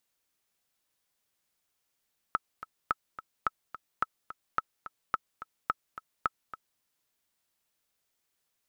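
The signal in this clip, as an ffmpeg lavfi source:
ffmpeg -f lavfi -i "aevalsrc='pow(10,(-13-14*gte(mod(t,2*60/215),60/215))/20)*sin(2*PI*1300*mod(t,60/215))*exp(-6.91*mod(t,60/215)/0.03)':duration=4.46:sample_rate=44100" out.wav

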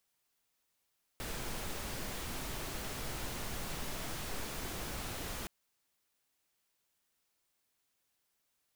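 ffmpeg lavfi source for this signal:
ffmpeg -f lavfi -i "anoisesrc=color=pink:amplitude=0.0513:duration=4.27:sample_rate=44100:seed=1" out.wav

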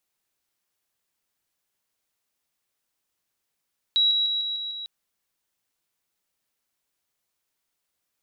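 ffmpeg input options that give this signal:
ffmpeg -f lavfi -i "aevalsrc='pow(10,(-17-3*floor(t/0.15))/20)*sin(2*PI*3880*t)':duration=0.9:sample_rate=44100" out.wav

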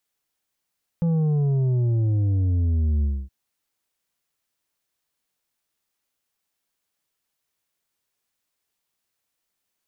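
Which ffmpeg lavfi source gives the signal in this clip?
ffmpeg -f lavfi -i "aevalsrc='0.112*clip((2.27-t)/0.26,0,1)*tanh(2.11*sin(2*PI*170*2.27/log(65/170)*(exp(log(65/170)*t/2.27)-1)))/tanh(2.11)':duration=2.27:sample_rate=44100" out.wav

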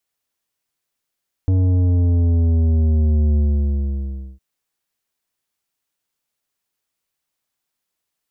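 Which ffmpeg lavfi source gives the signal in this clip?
ffmpeg -f lavfi -i "aevalsrc='0.2*clip((2.91-t)/1.03,0,1)*tanh(3.16*sin(2*PI*94*2.91/log(65/94)*(exp(log(65/94)*t/2.91)-1)))/tanh(3.16)':duration=2.91:sample_rate=44100" out.wav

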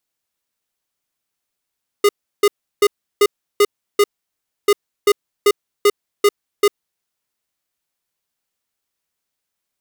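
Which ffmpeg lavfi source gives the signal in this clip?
ffmpeg -f lavfi -i "aevalsrc='0.282*(2*lt(mod(410*t,1),0.5)-1)*clip(min(mod(mod(t,2.64),0.39),0.05-mod(mod(t,2.64),0.39))/0.005,0,1)*lt(mod(t,2.64),2.34)':duration=5.28:sample_rate=44100" out.wav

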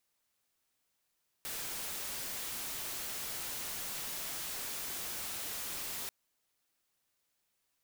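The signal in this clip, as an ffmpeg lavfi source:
ffmpeg -f lavfi -i "anoisesrc=color=white:amplitude=0.0173:duration=4.64:sample_rate=44100:seed=1" out.wav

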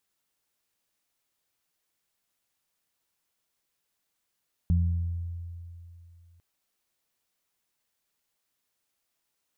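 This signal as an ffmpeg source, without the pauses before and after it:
ffmpeg -f lavfi -i "aevalsrc='0.106*pow(10,-3*t/2.78)*sin(2*PI*85.7*t)+0.0562*pow(10,-3*t/1.01)*sin(2*PI*171.4*t)':duration=1.7:sample_rate=44100" out.wav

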